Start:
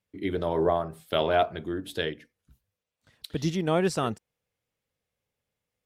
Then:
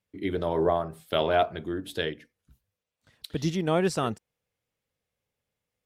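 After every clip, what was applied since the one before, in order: no audible change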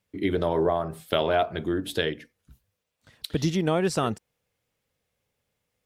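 compression 3:1, threshold -27 dBFS, peak gain reduction 7 dB; trim +6 dB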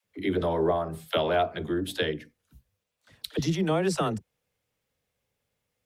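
phase dispersion lows, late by 52 ms, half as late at 350 Hz; trim -1.5 dB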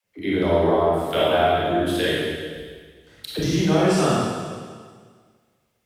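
reverberation RT60 1.7 s, pre-delay 22 ms, DRR -7 dB

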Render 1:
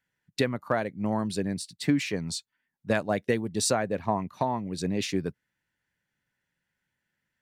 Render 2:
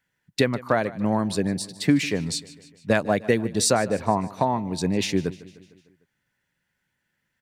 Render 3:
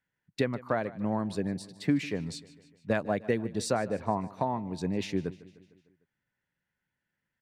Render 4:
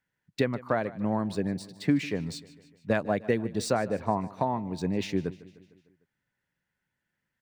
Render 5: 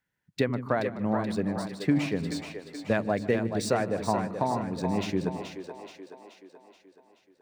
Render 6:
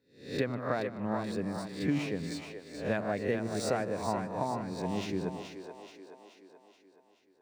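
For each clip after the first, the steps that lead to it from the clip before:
feedback delay 151 ms, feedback 57%, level -19 dB; trim +5 dB
treble shelf 3.7 kHz -10 dB; trim -7 dB
median filter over 3 samples; trim +2 dB
two-band feedback delay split 310 Hz, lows 88 ms, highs 428 ms, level -7 dB
reverse spectral sustain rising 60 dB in 0.47 s; trim -6.5 dB

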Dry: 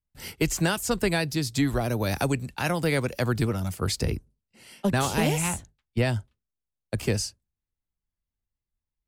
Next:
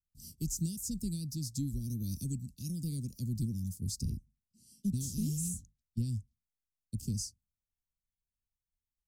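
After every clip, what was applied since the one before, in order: Chebyshev band-stop 230–5600 Hz, order 3; trim -6.5 dB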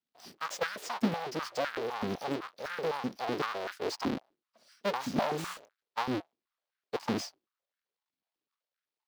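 square wave that keeps the level; resonant high shelf 6 kHz -11 dB, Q 1.5; step-sequenced high-pass 7.9 Hz 260–1500 Hz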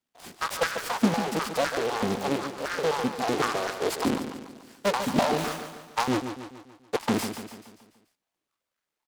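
on a send: feedback delay 144 ms, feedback 50%, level -9 dB; on the sum: delay time shaken by noise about 2.8 kHz, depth 0.043 ms; trim +6.5 dB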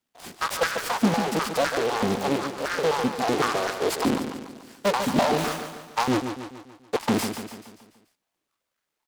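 saturation -15 dBFS, distortion -20 dB; trim +3.5 dB

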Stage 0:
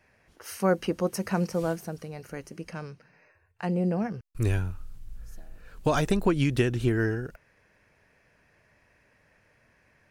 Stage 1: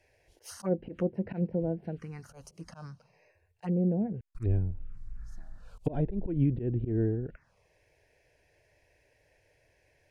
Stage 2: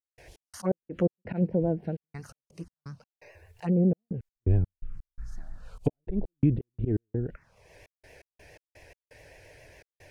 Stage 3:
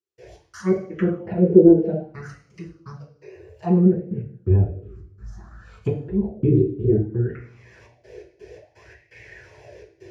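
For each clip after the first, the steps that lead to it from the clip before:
slow attack 111 ms; touch-sensitive phaser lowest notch 200 Hz, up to 1.2 kHz, full sweep at -30 dBFS; low-pass that closes with the level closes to 650 Hz, closed at -27 dBFS
upward compressor, threshold -46 dBFS; vibrato 7.3 Hz 74 cents; trance gate ".x.x.x.xxxx" 84 bpm -60 dB; trim +4.5 dB
reverberation RT60 0.60 s, pre-delay 3 ms, DRR -8 dB; sweeping bell 0.6 Hz 370–2200 Hz +16 dB; trim -8.5 dB

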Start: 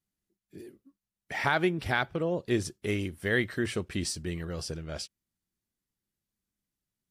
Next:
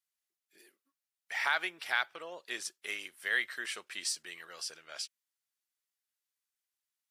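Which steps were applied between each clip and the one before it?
high-pass 1.2 kHz 12 dB/octave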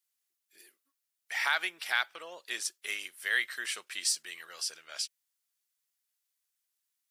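tilt EQ +2 dB/octave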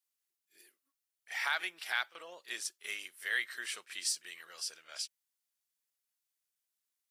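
pre-echo 34 ms -14 dB; trim -4.5 dB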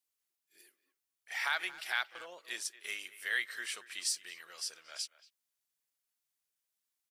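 speakerphone echo 230 ms, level -16 dB

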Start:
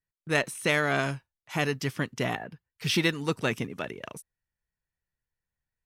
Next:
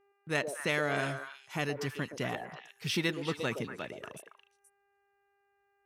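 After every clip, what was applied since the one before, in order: high-pass 49 Hz; mains buzz 400 Hz, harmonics 7, -64 dBFS -7 dB/octave; repeats whose band climbs or falls 119 ms, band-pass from 490 Hz, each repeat 1.4 oct, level -3.5 dB; trim -6 dB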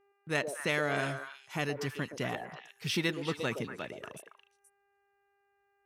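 no audible change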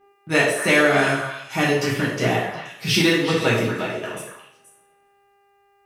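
two-slope reverb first 0.58 s, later 2.1 s, from -27 dB, DRR -6 dB; trim +7.5 dB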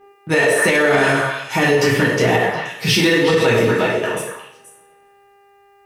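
in parallel at -8 dB: saturation -20 dBFS, distortion -9 dB; on the sum: small resonant body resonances 470/900/1800 Hz, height 8 dB; peak limiter -11 dBFS, peak gain reduction 9.5 dB; trim +4.5 dB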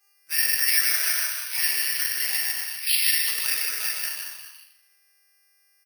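resonant high-pass 2.2 kHz, resonance Q 1.5; delay 152 ms -3.5 dB; careless resampling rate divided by 6×, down filtered, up zero stuff; trim -13 dB

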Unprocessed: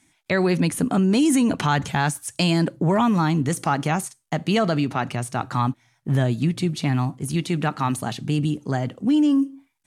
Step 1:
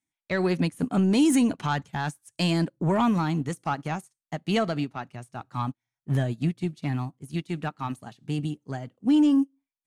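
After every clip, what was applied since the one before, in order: saturation -10.5 dBFS, distortion -23 dB; upward expansion 2.5:1, over -35 dBFS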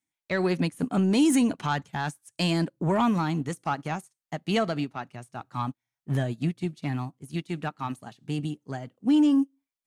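bass shelf 110 Hz -5.5 dB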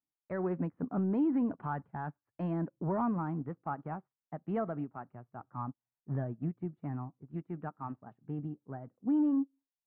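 low-pass 1.4 kHz 24 dB/octave; trim -8 dB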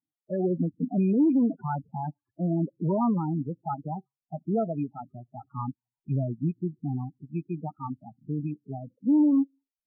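rattle on loud lows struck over -39 dBFS, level -37 dBFS; loudest bins only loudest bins 8; trim +7.5 dB

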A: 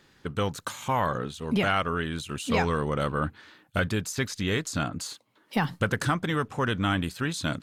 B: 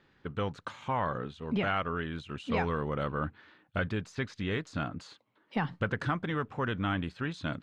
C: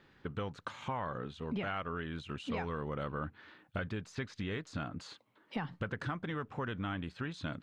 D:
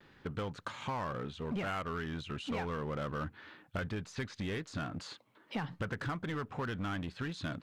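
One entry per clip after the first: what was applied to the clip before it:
low-pass 3 kHz 12 dB/octave; trim -5 dB
compression 2.5:1, threshold -40 dBFS, peak gain reduction 10 dB; trim +2 dB
in parallel at -7 dB: wavefolder -39 dBFS; on the sum: vibrato 0.44 Hz 23 cents

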